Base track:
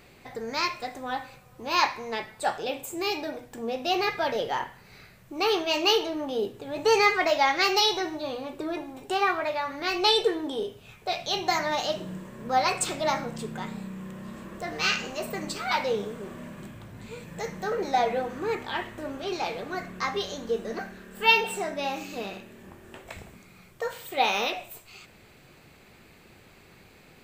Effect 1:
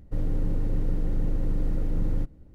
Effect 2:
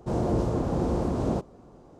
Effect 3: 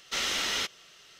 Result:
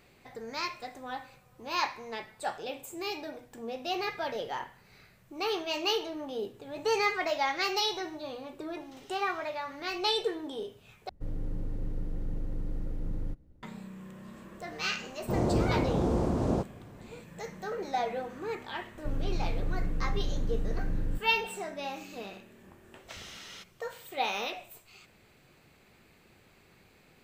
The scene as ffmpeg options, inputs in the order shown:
-filter_complex "[3:a]asplit=2[a][b];[1:a]asplit=2[c][d];[0:a]volume=-7dB[e];[a]acompressor=threshold=-44dB:ratio=6:attack=3.2:release=140:knee=1:detection=peak[f];[e]asplit=2[g][h];[g]atrim=end=11.094[i];[c]atrim=end=2.54,asetpts=PTS-STARTPTS,volume=-8.5dB[j];[h]atrim=start=13.626[k];[f]atrim=end=1.19,asetpts=PTS-STARTPTS,volume=-13.5dB,afade=t=in:d=0.004:c=hsin,afade=t=out:st=1.186:d=0.004:c=hsin,adelay=8800[l];[2:a]atrim=end=1.99,asetpts=PTS-STARTPTS,volume=-1.5dB,afade=t=in:d=0.004:c=hsin,afade=t=out:st=1.986:d=0.004:c=hsin,adelay=15220[m];[d]atrim=end=2.54,asetpts=PTS-STARTPTS,volume=-5.5dB,afade=t=in:d=0.004:c=hsin,afade=t=out:st=2.536:d=0.004:c=hsin,adelay=18930[n];[b]atrim=end=1.19,asetpts=PTS-STARTPTS,volume=-17dB,afade=t=in:d=0.004:c=hsin,afade=t=out:st=1.186:d=0.004:c=hsin,adelay=22970[o];[i][j]acrossfade=d=0.004:c1=hsin:c2=hsin[p];[p][k]acrossfade=d=0.004:c1=hsin:c2=hsin[q];[q][l][m][n][o]amix=inputs=5:normalize=0"

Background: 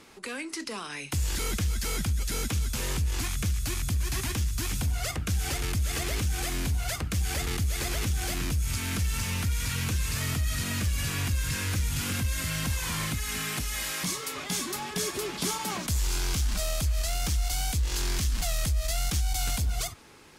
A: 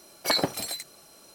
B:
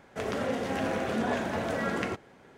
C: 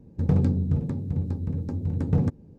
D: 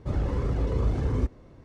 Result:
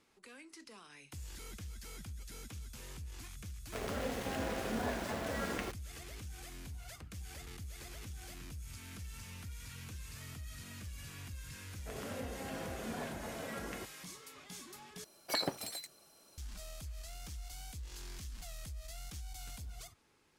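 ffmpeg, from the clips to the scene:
-filter_complex "[2:a]asplit=2[a][b];[0:a]volume=-18.5dB[c];[a]aeval=exprs='val(0)*gte(abs(val(0)),0.0211)':c=same[d];[c]asplit=2[e][f];[e]atrim=end=15.044[g];[1:a]atrim=end=1.34,asetpts=PTS-STARTPTS,volume=-10dB[h];[f]atrim=start=16.376[i];[d]atrim=end=2.57,asetpts=PTS-STARTPTS,volume=-7.5dB,afade=t=in:d=0.004:c=hsin,afade=t=out:st=2.566:d=0.004:c=hsin,adelay=3560[j];[b]atrim=end=2.57,asetpts=PTS-STARTPTS,volume=-13dB,afade=t=in:d=0.004:c=hsin,afade=t=out:st=2.566:d=0.004:c=hsin,adelay=515970S[k];[g][h]acrossfade=d=0.004:c1=hsin:c2=hsin[l];[l][i]acrossfade=d=0.004:c1=hsin:c2=hsin[m];[m][j][k]amix=inputs=3:normalize=0"

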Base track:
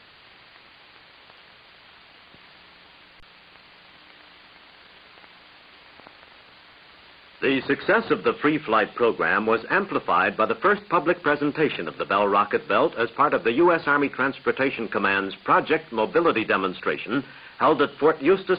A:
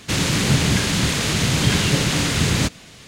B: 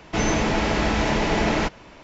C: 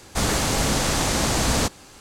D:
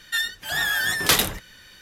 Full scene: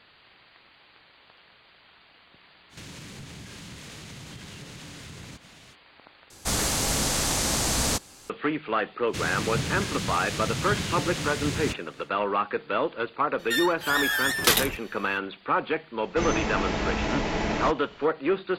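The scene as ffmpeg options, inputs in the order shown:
-filter_complex "[1:a]asplit=2[a][b];[0:a]volume=-6dB[c];[a]acompressor=threshold=-32dB:ratio=6:attack=3.2:release=140:knee=1:detection=peak[d];[3:a]highshelf=f=3.8k:g=7.5[e];[c]asplit=2[f][g];[f]atrim=end=6.304[h];[e]atrim=end=2,asetpts=PTS-STARTPTS,volume=-6dB[i];[g]atrim=start=8.296[j];[d]atrim=end=3.07,asetpts=PTS-STARTPTS,volume=-8.5dB,afade=t=in:d=0.05,afade=t=out:st=3.02:d=0.05,adelay=2690[k];[b]atrim=end=3.07,asetpts=PTS-STARTPTS,volume=-11.5dB,afade=t=in:d=0.1,afade=t=out:st=2.97:d=0.1,adelay=9050[l];[4:a]atrim=end=1.81,asetpts=PTS-STARTPTS,volume=-2.5dB,afade=t=in:d=0.02,afade=t=out:st=1.79:d=0.02,adelay=13380[m];[2:a]atrim=end=2.03,asetpts=PTS-STARTPTS,volume=-6dB,afade=t=in:d=0.004:c=hsin,afade=t=out:st=2.026:d=0.004:c=hsin,adelay=16030[n];[h][i]acrossfade=d=0.004:c1=hsin:c2=hsin[o];[o][j]acrossfade=d=0.004:c1=hsin:c2=hsin[p];[p][k][l][m][n]amix=inputs=5:normalize=0"

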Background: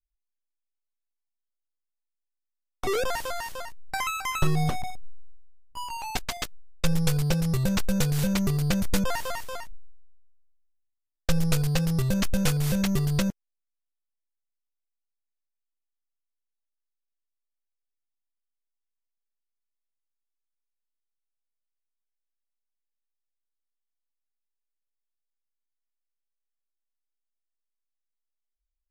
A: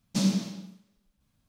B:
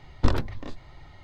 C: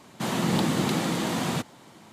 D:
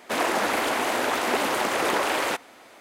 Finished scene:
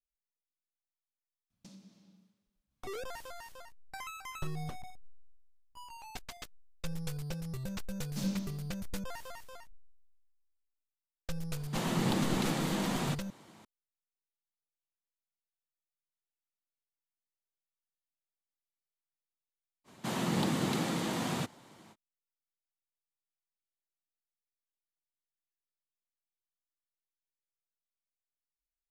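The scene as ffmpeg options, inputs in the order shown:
-filter_complex "[1:a]asplit=2[a][b];[3:a]asplit=2[c][d];[0:a]volume=-14.5dB[e];[a]acompressor=threshold=-37dB:ratio=16:attack=4.4:release=696:knee=1:detection=peak,atrim=end=1.48,asetpts=PTS-STARTPTS,volume=-12.5dB,afade=t=in:d=0.004:c=hsin,afade=t=out:st=1.476:d=0.004:c=hsin,adelay=1500[f];[b]atrim=end=1.48,asetpts=PTS-STARTPTS,volume=-12dB,afade=t=in:d=0.004:c=hsin,afade=t=out:st=1.476:d=0.004:c=hsin,adelay=8010[g];[c]atrim=end=2.12,asetpts=PTS-STARTPTS,volume=-6.5dB,afade=t=in:d=0.004:c=hsin,afade=t=out:st=2.116:d=0.004:c=hsin,adelay=11530[h];[d]atrim=end=2.12,asetpts=PTS-STARTPTS,volume=-6.5dB,afade=t=in:d=0.05,afade=t=out:st=2.07:d=0.05,adelay=19840[i];[e][f][g][h][i]amix=inputs=5:normalize=0"

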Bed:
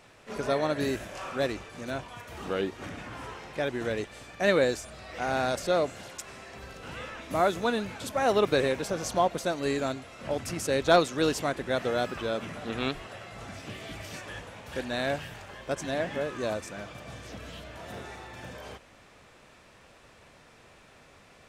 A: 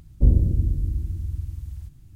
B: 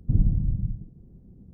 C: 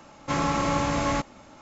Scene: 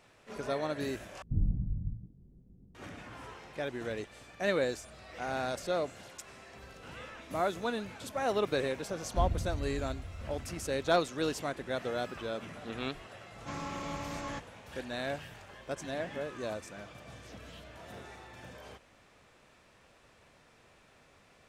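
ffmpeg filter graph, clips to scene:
-filter_complex "[0:a]volume=-6.5dB[a];[2:a]flanger=delay=16:depth=6.8:speed=2.5[b];[a]asplit=2[c][d];[c]atrim=end=1.224[e];[b]atrim=end=1.53,asetpts=PTS-STARTPTS,volume=-6dB[f];[d]atrim=start=2.746[g];[1:a]atrim=end=2.15,asetpts=PTS-STARTPTS,volume=-15dB,afade=t=in:d=0.004:c=hsin,afade=t=out:st=2.146:d=0.004:c=hsin,adelay=8950[h];[3:a]atrim=end=1.61,asetpts=PTS-STARTPTS,volume=-14.5dB,afade=t=in:d=0.004:c=hsin,afade=t=out:st=1.606:d=0.004:c=hsin,adelay=13180[i];[e][f]acrossfade=d=0.004:c1=hsin:c2=hsin[j];[j][g]acrossfade=d=0.004:c1=hsin:c2=hsin[k];[k][h][i]amix=inputs=3:normalize=0"

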